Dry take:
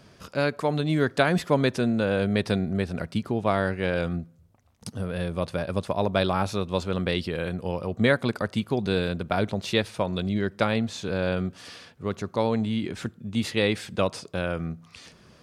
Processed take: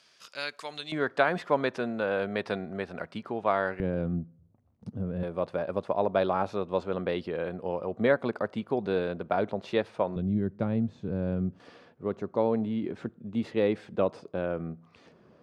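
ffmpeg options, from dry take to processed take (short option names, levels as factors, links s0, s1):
-af "asetnsamples=n=441:p=0,asendcmd='0.92 bandpass f 990;3.8 bandpass f 200;5.23 bandpass f 620;10.16 bandpass f 160;11.6 bandpass f 430',bandpass=f=4400:t=q:w=0.71:csg=0"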